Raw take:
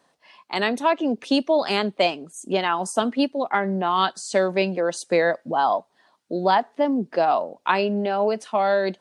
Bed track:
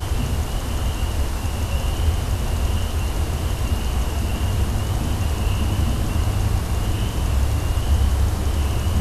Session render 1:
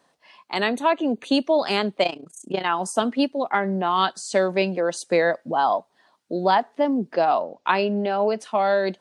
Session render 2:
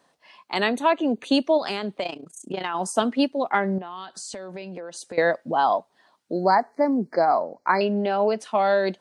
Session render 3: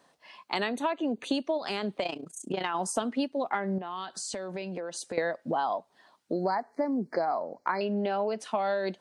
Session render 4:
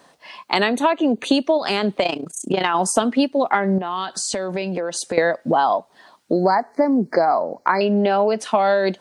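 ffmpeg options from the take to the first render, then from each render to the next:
-filter_complex "[0:a]asettb=1/sr,asplit=3[a][b][c];[a]atrim=end=0.584[d];[b]atrim=start=0.58:end=1.44,asetpts=PTS-STARTPTS,afade=t=in:d=0.004:c=qsin,afade=t=out:st=0.856:d=0.004:c=qsin,asuperstop=centerf=5300:order=8:qfactor=4.6[e];[c]atrim=start=1.436[f];[d][e]acrossfade=d=0.004:c1=hsin:c2=qsin[g];[g][f]acrossfade=d=0.004:c1=qsin:c2=hsin,asettb=1/sr,asplit=3[h][i][j];[h]atrim=end=2.034[k];[i]atrim=start=2.03:end=2.66,asetpts=PTS-STARTPTS,afade=t=in:d=0.004:c=qsin,afade=t=out:st=0.626:d=0.004:c=qsin,tremolo=f=29:d=0.824[l];[j]atrim=start=2.656[m];[k][l]acrossfade=d=0.004:c1=hsin:c2=qsin[n];[n][m]acrossfade=d=0.004:c1=qsin:c2=hsin,asettb=1/sr,asplit=3[o][p][q];[o]atrim=end=7.144[r];[p]atrim=start=7.14:end=8.39,asetpts=PTS-STARTPTS,afade=t=in:d=0.004:c=qsin,afade=t=out:st=1.246:d=0.004:c=qsin,lowpass=f=6.7k:w=0.5412,lowpass=f=6.7k:w=1.3066[s];[q]atrim=start=8.386[t];[r][s]acrossfade=d=0.004:c1=hsin:c2=qsin[u];[u][t]acrossfade=d=0.004:c1=qsin:c2=hsin"
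-filter_complex "[0:a]asplit=3[a][b][c];[a]afade=t=out:st=1.57:d=0.02[d];[b]acompressor=threshold=-23dB:ratio=6:attack=3.2:release=140:knee=1:detection=peak,afade=t=in:st=1.57:d=0.02,afade=t=out:st=2.74:d=0.02[e];[c]afade=t=in:st=2.74:d=0.02[f];[d][e][f]amix=inputs=3:normalize=0,asettb=1/sr,asplit=3[g][h][i];[g]atrim=end=3.784[j];[h]atrim=start=3.78:end=5.18,asetpts=PTS-STARTPTS,afade=t=in:d=0.004:c=qsin,afade=t=out:st=1.396:d=0.004:c=qsin,acompressor=threshold=-32dB:ratio=12:attack=3.2:release=140:knee=1:detection=peak[k];[i]atrim=start=5.176[l];[j][k]acrossfade=d=0.004:c1=hsin:c2=qsin[m];[m][l]acrossfade=d=0.004:c1=qsin:c2=hsin,asettb=1/sr,asplit=3[n][o][p];[n]atrim=end=6.334[q];[o]atrim=start=6.33:end=7.81,asetpts=PTS-STARTPTS,afade=t=in:d=0.004:c=qsin,afade=t=out:st=1.476:d=0.004:c=qsin,asuperstop=centerf=3100:order=20:qfactor=1.8[r];[p]atrim=start=7.806[s];[q][r]acrossfade=d=0.004:c1=hsin:c2=qsin[t];[t][s]acrossfade=d=0.004:c1=qsin:c2=hsin"
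-af "acompressor=threshold=-26dB:ratio=6"
-af "volume=11.5dB,alimiter=limit=-2dB:level=0:latency=1"

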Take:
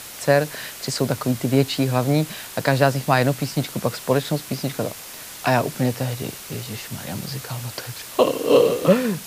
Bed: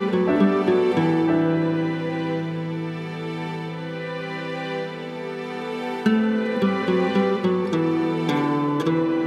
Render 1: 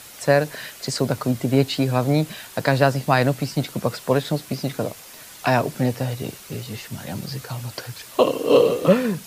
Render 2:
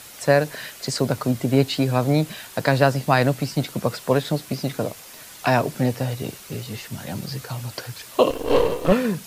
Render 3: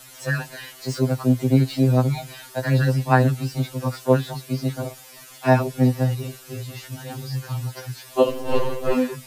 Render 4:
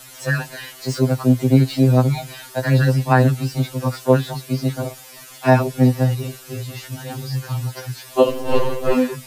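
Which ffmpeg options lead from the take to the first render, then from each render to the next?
-af "afftdn=nr=6:nf=-38"
-filter_complex "[0:a]asettb=1/sr,asplit=3[a][b][c];[a]atrim=end=8.304[d];[b]atrim=start=8.3:end=8.92,asetpts=PTS-STARTPTS,afade=t=in:d=0.004:c=qsin,afade=t=out:st=0.616:d=0.004:c=qsin,aeval=exprs='if(lt(val(0),0),0.251*val(0),val(0))':c=same[e];[c]atrim=start=8.916[f];[d][e]acrossfade=d=0.004:c1=hsin:c2=qsin[g];[g][f]acrossfade=d=0.004:c1=qsin:c2=hsin"
-filter_complex "[0:a]acrossover=split=120|1700[a][b][c];[c]asoftclip=type=tanh:threshold=-29.5dB[d];[a][b][d]amix=inputs=3:normalize=0,afftfilt=real='re*2.45*eq(mod(b,6),0)':imag='im*2.45*eq(mod(b,6),0)':win_size=2048:overlap=0.75"
-af "volume=3.5dB,alimiter=limit=-2dB:level=0:latency=1"

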